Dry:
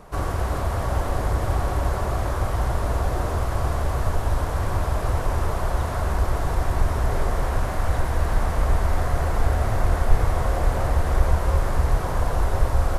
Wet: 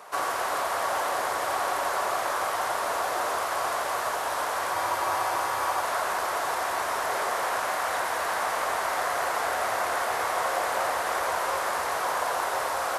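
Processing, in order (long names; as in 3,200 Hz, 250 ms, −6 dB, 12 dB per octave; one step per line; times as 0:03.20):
high-pass filter 770 Hz 12 dB per octave
frozen spectrum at 0:04.77, 1.05 s
level +5.5 dB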